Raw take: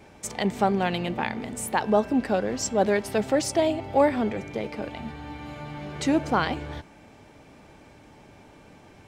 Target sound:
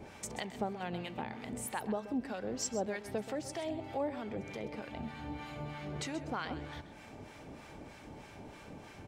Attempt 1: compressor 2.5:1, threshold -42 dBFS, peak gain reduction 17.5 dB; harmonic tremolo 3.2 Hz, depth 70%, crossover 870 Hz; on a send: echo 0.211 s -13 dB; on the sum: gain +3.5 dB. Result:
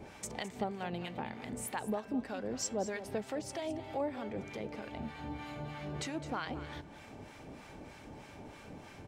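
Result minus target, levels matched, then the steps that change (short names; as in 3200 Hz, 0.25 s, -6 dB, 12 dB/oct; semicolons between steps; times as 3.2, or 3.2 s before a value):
echo 81 ms late
change: echo 0.13 s -13 dB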